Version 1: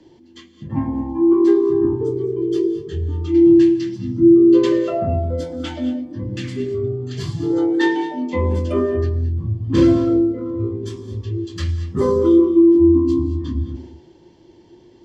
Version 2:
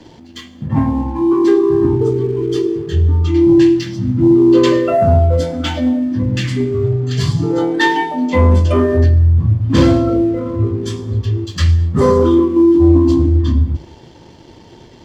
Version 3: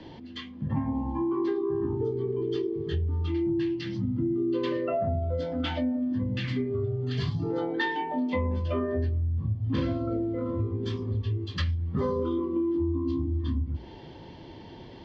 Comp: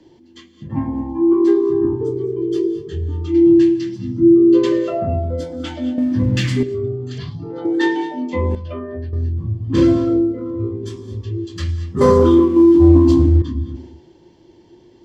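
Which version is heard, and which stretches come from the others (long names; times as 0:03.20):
1
0:05.98–0:06.63: punch in from 2
0:07.18–0:07.65: punch in from 3
0:08.55–0:09.13: punch in from 3
0:12.01–0:13.42: punch in from 2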